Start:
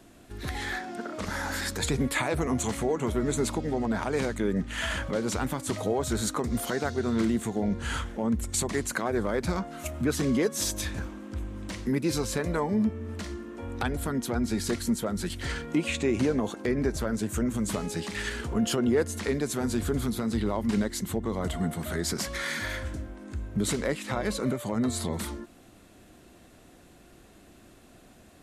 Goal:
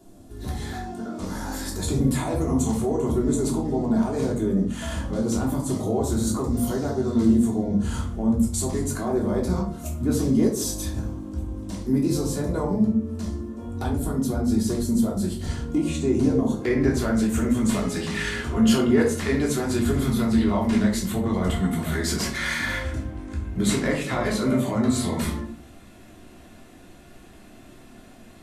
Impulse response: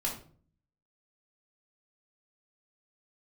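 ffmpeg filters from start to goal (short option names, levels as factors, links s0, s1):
-filter_complex "[0:a]asetnsamples=n=441:p=0,asendcmd='16.62 equalizer g 2.5',equalizer=f=2100:w=0.8:g=-13.5[s0];[1:a]atrim=start_sample=2205[s1];[s0][s1]afir=irnorm=-1:irlink=0"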